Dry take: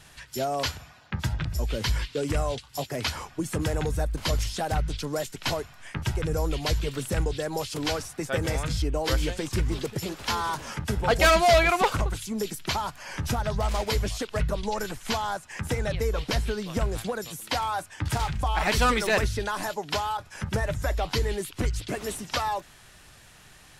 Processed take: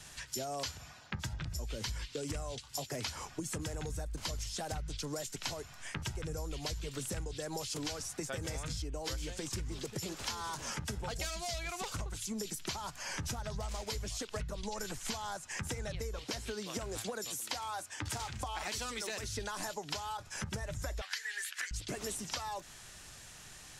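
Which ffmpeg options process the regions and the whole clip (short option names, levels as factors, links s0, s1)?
-filter_complex "[0:a]asettb=1/sr,asplit=3[s0][s1][s2];[s0]atrim=end=16.184[s3];[s1]atrim=start=16.18:end=19.37,asetpts=PTS-STARTPTS,afade=t=in:d=0.004:c=qsin,afade=t=out:st=3.186:d=0.004:c=qsin,highpass=96,equalizer=f=160:w=3.8:g=-12[s4];[s2]atrim=start=19.366[s5];[s3][s4]acrossfade=d=0.004:c1=hsin:c2=qsin[s6];[s6][s5]acrossfade=d=0.004:c1=qsin:c2=hsin,asettb=1/sr,asplit=3[s7][s8][s9];[s7]atrim=end=21.014[s10];[s8]atrim=start=21.01:end=21.71,asetpts=PTS-STARTPTS,afade=t=in:d=0.004:c=qsin,afade=t=out:st=0.696:d=0.004:c=qsin,highpass=f=1700:t=q:w=8.2,asplit=2[s11][s12];[s12]adelay=12,volume=0.251[s13];[s11][s13]amix=inputs=2:normalize=0,atrim=end_sample=30870[s14];[s9]atrim=start=21.706[s15];[s10][s14]acrossfade=d=0.004:c1=hsin:c2=qsin[s16];[s16][s15]acrossfade=d=0.004:c1=qsin:c2=hsin,acrossover=split=170|3000[s17][s18][s19];[s18]acompressor=threshold=0.0447:ratio=6[s20];[s17][s20][s19]amix=inputs=3:normalize=0,equalizer=f=6700:w=1.1:g=8,acompressor=threshold=0.0224:ratio=10,volume=0.75"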